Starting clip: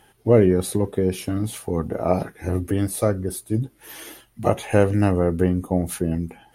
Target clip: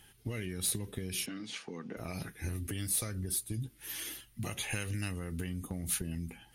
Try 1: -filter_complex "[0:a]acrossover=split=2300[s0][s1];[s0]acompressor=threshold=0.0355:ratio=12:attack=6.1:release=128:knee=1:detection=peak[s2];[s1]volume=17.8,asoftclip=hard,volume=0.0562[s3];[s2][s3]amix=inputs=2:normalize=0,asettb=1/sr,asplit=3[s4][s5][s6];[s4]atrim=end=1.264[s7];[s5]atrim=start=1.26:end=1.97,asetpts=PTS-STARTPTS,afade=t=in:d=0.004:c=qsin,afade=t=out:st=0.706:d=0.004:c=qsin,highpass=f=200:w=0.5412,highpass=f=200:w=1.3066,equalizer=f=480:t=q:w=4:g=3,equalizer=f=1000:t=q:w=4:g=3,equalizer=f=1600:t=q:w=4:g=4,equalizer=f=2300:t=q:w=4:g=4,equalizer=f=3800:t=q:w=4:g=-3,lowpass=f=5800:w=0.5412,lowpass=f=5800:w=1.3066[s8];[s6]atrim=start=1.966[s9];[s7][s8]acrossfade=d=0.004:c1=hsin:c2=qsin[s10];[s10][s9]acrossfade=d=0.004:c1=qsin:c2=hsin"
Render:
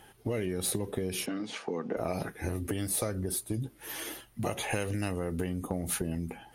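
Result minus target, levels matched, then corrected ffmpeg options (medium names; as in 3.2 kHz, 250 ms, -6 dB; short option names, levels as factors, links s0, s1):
500 Hz band +8.5 dB
-filter_complex "[0:a]acrossover=split=2300[s0][s1];[s0]acompressor=threshold=0.0355:ratio=12:attack=6.1:release=128:knee=1:detection=peak,equalizer=f=660:t=o:w=2.5:g=-14.5[s2];[s1]volume=17.8,asoftclip=hard,volume=0.0562[s3];[s2][s3]amix=inputs=2:normalize=0,asettb=1/sr,asplit=3[s4][s5][s6];[s4]atrim=end=1.264[s7];[s5]atrim=start=1.26:end=1.97,asetpts=PTS-STARTPTS,afade=t=in:d=0.004:c=qsin,afade=t=out:st=0.706:d=0.004:c=qsin,highpass=f=200:w=0.5412,highpass=f=200:w=1.3066,equalizer=f=480:t=q:w=4:g=3,equalizer=f=1000:t=q:w=4:g=3,equalizer=f=1600:t=q:w=4:g=4,equalizer=f=2300:t=q:w=4:g=4,equalizer=f=3800:t=q:w=4:g=-3,lowpass=f=5800:w=0.5412,lowpass=f=5800:w=1.3066[s8];[s6]atrim=start=1.966[s9];[s7][s8]acrossfade=d=0.004:c1=hsin:c2=qsin[s10];[s10][s9]acrossfade=d=0.004:c1=qsin:c2=hsin"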